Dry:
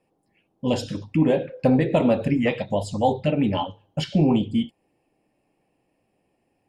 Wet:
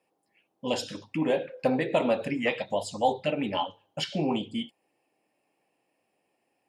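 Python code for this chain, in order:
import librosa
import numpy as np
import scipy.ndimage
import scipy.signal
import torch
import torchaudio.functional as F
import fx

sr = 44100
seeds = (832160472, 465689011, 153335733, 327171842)

y = fx.highpass(x, sr, hz=700.0, slope=6)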